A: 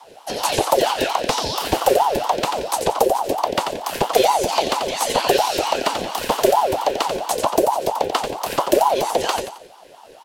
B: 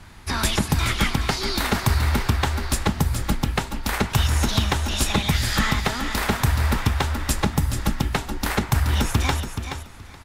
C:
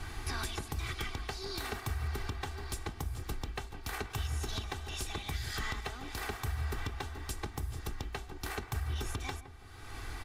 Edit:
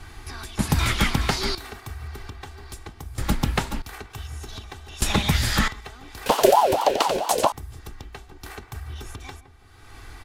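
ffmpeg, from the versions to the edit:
-filter_complex "[1:a]asplit=3[a][b][c];[2:a]asplit=5[d][e][f][g][h];[d]atrim=end=0.592[i];[a]atrim=start=0.588:end=1.552[j];[e]atrim=start=1.548:end=3.182[k];[b]atrim=start=3.178:end=3.822[l];[f]atrim=start=3.818:end=5.022[m];[c]atrim=start=5.018:end=5.682[n];[g]atrim=start=5.678:end=6.262[o];[0:a]atrim=start=6.258:end=7.522[p];[h]atrim=start=7.518[q];[i][j]acrossfade=d=0.004:c1=hsin:c2=hsin[r];[r][k]acrossfade=d=0.004:c1=hsin:c2=hsin[s];[s][l]acrossfade=d=0.004:c1=hsin:c2=hsin[t];[t][m]acrossfade=d=0.004:c1=hsin:c2=hsin[u];[u][n]acrossfade=d=0.004:c1=hsin:c2=hsin[v];[v][o]acrossfade=d=0.004:c1=hsin:c2=hsin[w];[w][p]acrossfade=d=0.004:c1=hsin:c2=hsin[x];[x][q]acrossfade=d=0.004:c1=hsin:c2=hsin"

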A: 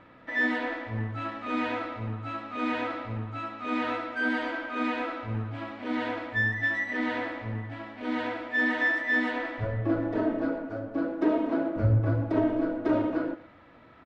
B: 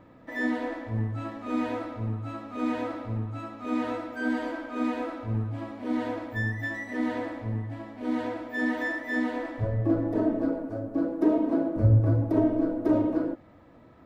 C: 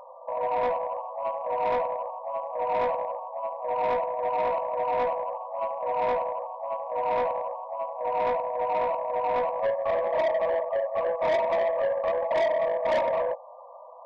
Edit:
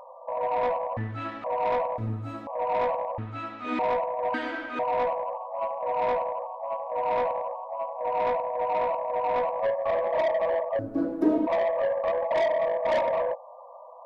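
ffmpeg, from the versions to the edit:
-filter_complex "[0:a]asplit=3[a][b][c];[1:a]asplit=2[d][e];[2:a]asplit=6[f][g][h][i][j][k];[f]atrim=end=0.972[l];[a]atrim=start=0.968:end=1.442[m];[g]atrim=start=1.438:end=1.982[n];[d]atrim=start=1.978:end=2.472[o];[h]atrim=start=2.468:end=3.182[p];[b]atrim=start=3.178:end=3.792[q];[i]atrim=start=3.788:end=4.342[r];[c]atrim=start=4.338:end=4.792[s];[j]atrim=start=4.788:end=10.792[t];[e]atrim=start=10.788:end=11.472[u];[k]atrim=start=11.468[v];[l][m]acrossfade=d=0.004:c1=hsin:c2=hsin[w];[w][n]acrossfade=d=0.004:c1=hsin:c2=hsin[x];[x][o]acrossfade=d=0.004:c1=hsin:c2=hsin[y];[y][p]acrossfade=d=0.004:c1=hsin:c2=hsin[z];[z][q]acrossfade=d=0.004:c1=hsin:c2=hsin[aa];[aa][r]acrossfade=d=0.004:c1=hsin:c2=hsin[ab];[ab][s]acrossfade=d=0.004:c1=hsin:c2=hsin[ac];[ac][t]acrossfade=d=0.004:c1=hsin:c2=hsin[ad];[ad][u]acrossfade=d=0.004:c1=hsin:c2=hsin[ae];[ae][v]acrossfade=d=0.004:c1=hsin:c2=hsin"

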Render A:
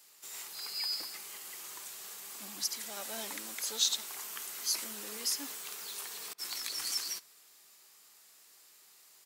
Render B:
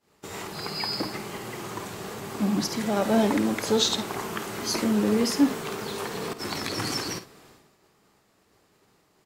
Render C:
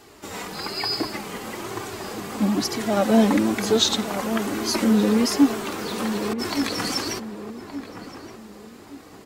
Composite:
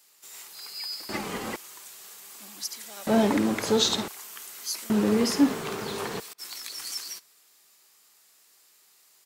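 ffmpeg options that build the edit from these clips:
-filter_complex "[1:a]asplit=2[a][b];[0:a]asplit=4[c][d][e][f];[c]atrim=end=1.092[g];[2:a]atrim=start=1.088:end=1.562[h];[d]atrim=start=1.558:end=3.072[i];[a]atrim=start=3.068:end=4.082[j];[e]atrim=start=4.078:end=4.902[k];[b]atrim=start=4.898:end=6.202[l];[f]atrim=start=6.198[m];[g][h]acrossfade=d=0.004:c1=hsin:c2=hsin[n];[n][i]acrossfade=d=0.004:c1=hsin:c2=hsin[o];[o][j]acrossfade=d=0.004:c1=hsin:c2=hsin[p];[p][k]acrossfade=d=0.004:c1=hsin:c2=hsin[q];[q][l]acrossfade=d=0.004:c1=hsin:c2=hsin[r];[r][m]acrossfade=d=0.004:c1=hsin:c2=hsin"

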